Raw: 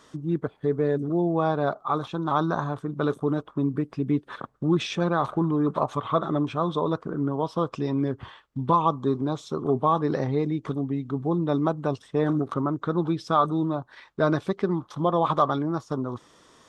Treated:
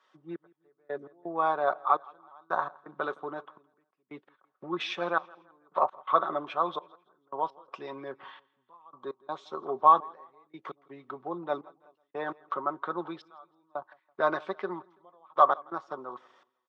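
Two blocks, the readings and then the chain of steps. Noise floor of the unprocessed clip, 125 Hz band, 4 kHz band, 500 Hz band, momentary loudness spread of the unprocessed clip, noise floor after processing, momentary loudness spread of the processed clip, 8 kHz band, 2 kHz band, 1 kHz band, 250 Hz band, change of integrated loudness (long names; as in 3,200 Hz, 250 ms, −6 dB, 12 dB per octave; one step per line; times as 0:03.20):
−58 dBFS, −26.0 dB, −5.5 dB, −7.5 dB, 6 LU, −78 dBFS, 21 LU, can't be measured, −0.5 dB, −1.0 dB, −17.5 dB, −4.0 dB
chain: camcorder AGC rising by 9.6 dB per second
high-shelf EQ 2,700 Hz −10 dB
comb filter 5.4 ms, depth 39%
gate pattern "xx...x.xx" 84 BPM −24 dB
band-pass filter 770–3,500 Hz
repeating echo 166 ms, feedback 49%, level −23.5 dB
multiband upward and downward expander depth 40%
level +2 dB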